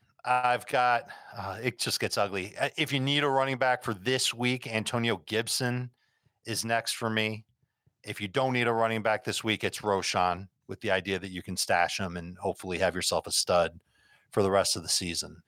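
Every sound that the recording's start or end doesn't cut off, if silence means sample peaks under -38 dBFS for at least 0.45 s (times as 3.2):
6.47–7.39
8.07–13.69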